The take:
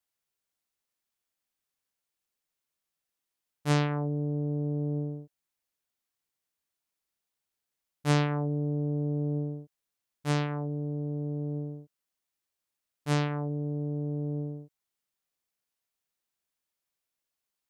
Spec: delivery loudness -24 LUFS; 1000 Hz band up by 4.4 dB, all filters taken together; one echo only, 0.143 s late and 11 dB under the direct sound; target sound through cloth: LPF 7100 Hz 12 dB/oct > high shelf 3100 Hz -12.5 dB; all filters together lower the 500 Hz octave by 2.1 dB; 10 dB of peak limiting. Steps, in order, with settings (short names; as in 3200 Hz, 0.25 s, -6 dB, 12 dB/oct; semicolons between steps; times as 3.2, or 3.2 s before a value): bell 500 Hz -4 dB; bell 1000 Hz +8.5 dB; limiter -21.5 dBFS; LPF 7100 Hz 12 dB/oct; high shelf 3100 Hz -12.5 dB; echo 0.143 s -11 dB; gain +7.5 dB